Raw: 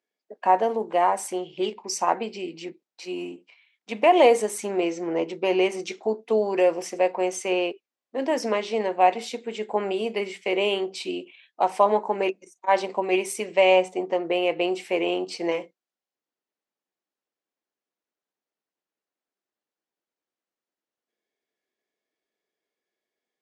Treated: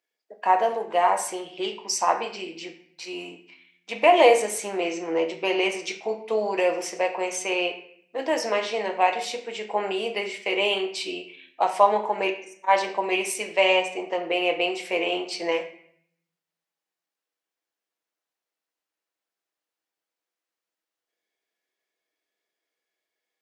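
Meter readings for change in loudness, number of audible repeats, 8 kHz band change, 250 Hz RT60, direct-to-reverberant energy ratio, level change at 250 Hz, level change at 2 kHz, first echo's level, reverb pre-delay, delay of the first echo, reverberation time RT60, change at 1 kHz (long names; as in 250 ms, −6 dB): 0.0 dB, no echo audible, +3.0 dB, 1.1 s, 4.0 dB, −4.0 dB, +3.5 dB, no echo audible, 6 ms, no echo audible, 0.65 s, +0.5 dB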